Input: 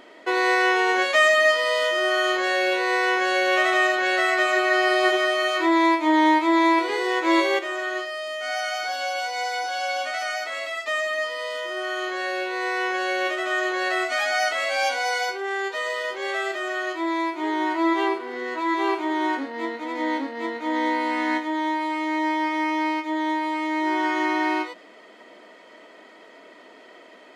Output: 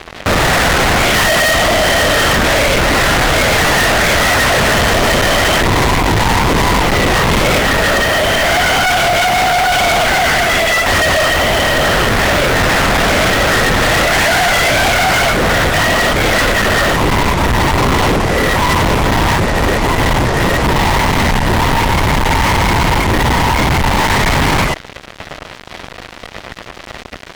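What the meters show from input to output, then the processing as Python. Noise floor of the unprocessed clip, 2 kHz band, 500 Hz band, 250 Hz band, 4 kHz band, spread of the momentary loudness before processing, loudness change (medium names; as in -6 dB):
-48 dBFS, +10.5 dB, +10.0 dB, +8.0 dB, +14.5 dB, 9 LU, +11.0 dB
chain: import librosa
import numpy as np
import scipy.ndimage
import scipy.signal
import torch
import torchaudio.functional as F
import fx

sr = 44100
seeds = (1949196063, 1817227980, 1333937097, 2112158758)

y = fx.lpc_vocoder(x, sr, seeds[0], excitation='whisper', order=10)
y = fx.fuzz(y, sr, gain_db=41.0, gate_db=-44.0)
y = y * 10.0 ** (2.5 / 20.0)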